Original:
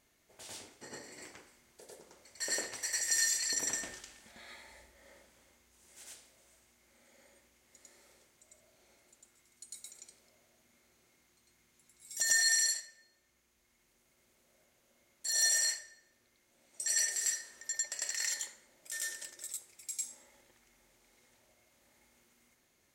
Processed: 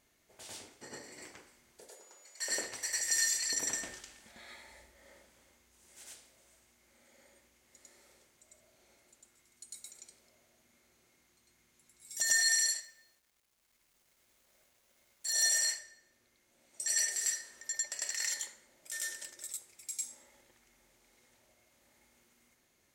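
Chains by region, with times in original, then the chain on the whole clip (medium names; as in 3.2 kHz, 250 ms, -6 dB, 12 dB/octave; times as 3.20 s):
1.88–2.49 s: high-pass 490 Hz + whistle 6.9 kHz -59 dBFS
12.82–15.31 s: peaking EQ 220 Hz -5.5 dB 2.5 oct + companded quantiser 6-bit
whole clip: none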